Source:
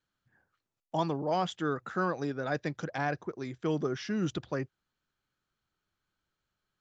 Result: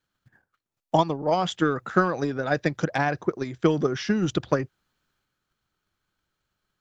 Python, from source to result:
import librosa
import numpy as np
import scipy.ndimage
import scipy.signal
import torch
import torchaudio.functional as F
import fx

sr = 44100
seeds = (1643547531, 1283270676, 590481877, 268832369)

y = fx.transient(x, sr, attack_db=10, sustain_db=fx.steps((0.0, -8.0), (1.4, 5.0)))
y = y * librosa.db_to_amplitude(4.0)